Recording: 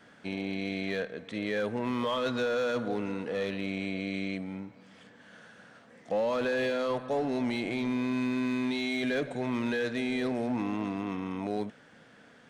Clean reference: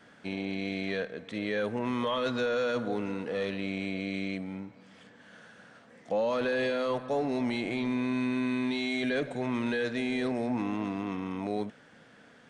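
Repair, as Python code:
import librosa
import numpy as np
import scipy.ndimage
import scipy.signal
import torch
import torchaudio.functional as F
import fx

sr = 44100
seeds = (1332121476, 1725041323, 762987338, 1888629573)

y = fx.fix_declip(x, sr, threshold_db=-23.5)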